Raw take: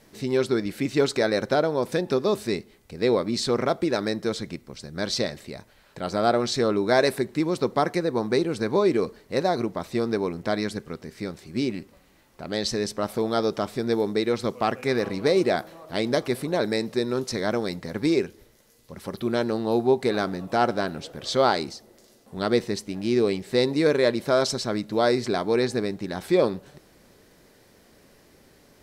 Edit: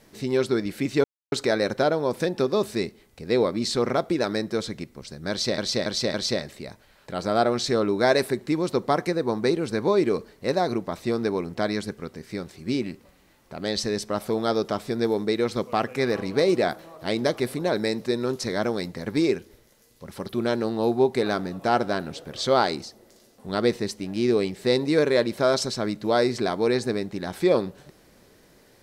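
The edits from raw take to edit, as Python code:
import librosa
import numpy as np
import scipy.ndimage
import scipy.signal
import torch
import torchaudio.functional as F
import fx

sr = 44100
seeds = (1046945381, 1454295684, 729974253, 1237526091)

y = fx.edit(x, sr, fx.insert_silence(at_s=1.04, length_s=0.28),
    fx.repeat(start_s=5.02, length_s=0.28, count=4), tone=tone)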